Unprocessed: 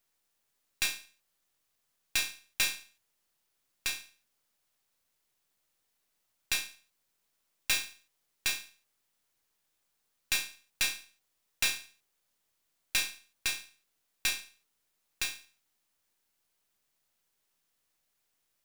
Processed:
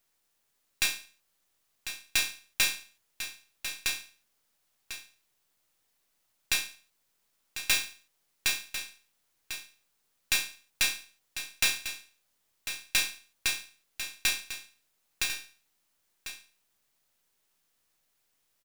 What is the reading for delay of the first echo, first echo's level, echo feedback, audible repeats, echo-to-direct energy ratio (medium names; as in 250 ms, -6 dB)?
1047 ms, -10.5 dB, no regular repeats, 1, -10.5 dB